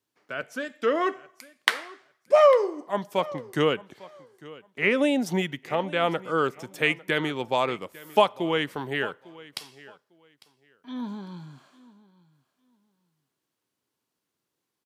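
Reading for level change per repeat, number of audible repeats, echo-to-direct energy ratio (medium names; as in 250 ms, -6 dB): -14.0 dB, 2, -20.5 dB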